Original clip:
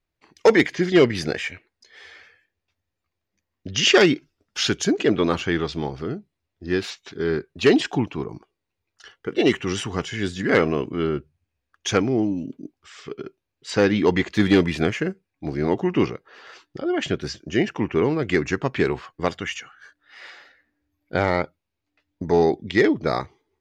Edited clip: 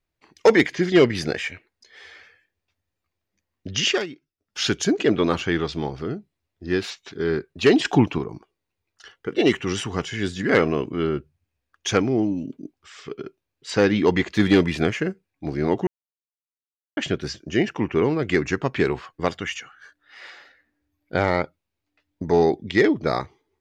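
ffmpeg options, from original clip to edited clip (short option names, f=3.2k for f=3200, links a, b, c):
-filter_complex "[0:a]asplit=7[a][b][c][d][e][f][g];[a]atrim=end=4.06,asetpts=PTS-STARTPTS,afade=t=out:st=3.75:d=0.31:silence=0.11885[h];[b]atrim=start=4.06:end=4.38,asetpts=PTS-STARTPTS,volume=-18.5dB[i];[c]atrim=start=4.38:end=7.852,asetpts=PTS-STARTPTS,afade=t=in:d=0.31:silence=0.11885[j];[d]atrim=start=7.848:end=8.182,asetpts=PTS-STARTPTS,volume=6dB[k];[e]atrim=start=8.178:end=15.87,asetpts=PTS-STARTPTS,afade=t=out:st=7.688:d=0.004:c=hsin[l];[f]atrim=start=15.87:end=16.97,asetpts=PTS-STARTPTS,volume=0[m];[g]atrim=start=16.97,asetpts=PTS-STARTPTS,afade=t=in:d=0.004:c=hsin[n];[h][i][j]concat=n=3:v=0:a=1[o];[o][k]acrossfade=d=0.004:c1=hsin:c2=hsin[p];[l][m][n]concat=n=3:v=0:a=1[q];[p][q]acrossfade=d=0.004:c1=hsin:c2=hsin"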